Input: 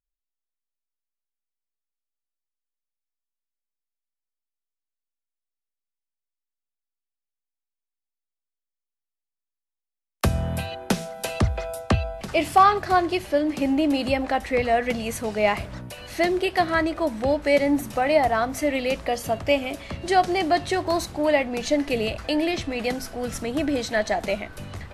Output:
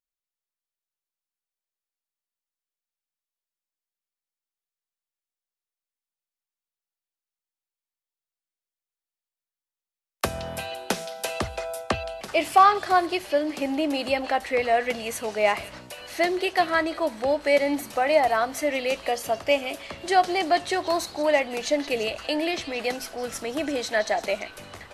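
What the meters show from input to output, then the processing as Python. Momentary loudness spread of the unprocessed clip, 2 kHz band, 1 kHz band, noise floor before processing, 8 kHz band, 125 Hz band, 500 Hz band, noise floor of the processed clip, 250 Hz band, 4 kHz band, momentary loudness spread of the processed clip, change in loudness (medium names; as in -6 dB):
9 LU, 0.0 dB, 0.0 dB, under -85 dBFS, +0.5 dB, -13.0 dB, -1.0 dB, under -85 dBFS, -5.5 dB, +0.5 dB, 10 LU, -1.0 dB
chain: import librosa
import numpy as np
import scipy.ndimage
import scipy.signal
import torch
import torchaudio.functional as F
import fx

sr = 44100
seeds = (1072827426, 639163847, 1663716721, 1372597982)

y = fx.bass_treble(x, sr, bass_db=-14, treble_db=0)
y = fx.echo_stepped(y, sr, ms=171, hz=3900.0, octaves=0.7, feedback_pct=70, wet_db=-9.0)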